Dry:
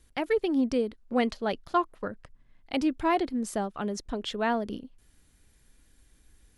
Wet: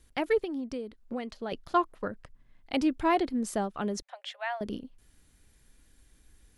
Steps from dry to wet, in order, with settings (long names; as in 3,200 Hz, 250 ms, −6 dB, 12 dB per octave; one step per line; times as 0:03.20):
0:00.40–0:01.52: downward compressor 6 to 1, threshold −33 dBFS, peak gain reduction 12.5 dB
0:04.02–0:04.61: Chebyshev high-pass with heavy ripple 540 Hz, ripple 9 dB